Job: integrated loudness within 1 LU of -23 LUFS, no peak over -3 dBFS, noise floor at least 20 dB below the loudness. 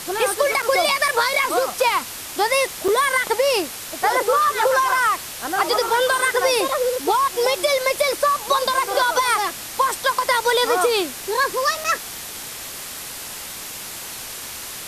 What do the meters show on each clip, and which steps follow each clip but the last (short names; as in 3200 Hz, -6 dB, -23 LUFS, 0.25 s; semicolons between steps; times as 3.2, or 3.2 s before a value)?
dropouts 3; longest dropout 5.4 ms; noise floor -33 dBFS; noise floor target -40 dBFS; loudness -19.5 LUFS; peak -5.0 dBFS; loudness target -23.0 LUFS
-> interpolate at 0.62/2.88/11.84, 5.4 ms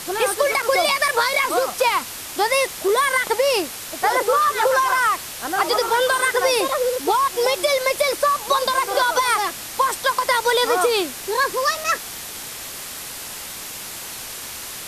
dropouts 0; noise floor -33 dBFS; noise floor target -40 dBFS
-> denoiser 7 dB, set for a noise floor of -33 dBFS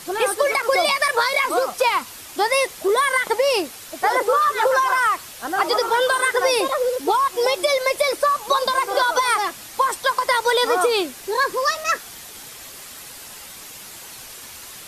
noise floor -39 dBFS; noise floor target -40 dBFS
-> denoiser 6 dB, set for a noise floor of -39 dBFS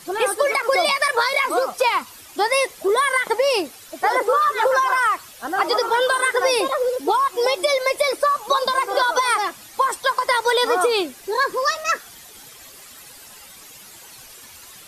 noise floor -43 dBFS; loudness -20.0 LUFS; peak -6.0 dBFS; loudness target -23.0 LUFS
-> gain -3 dB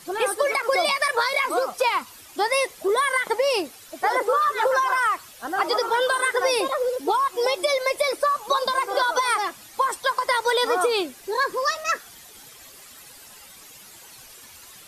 loudness -23.0 LUFS; peak -9.0 dBFS; noise floor -46 dBFS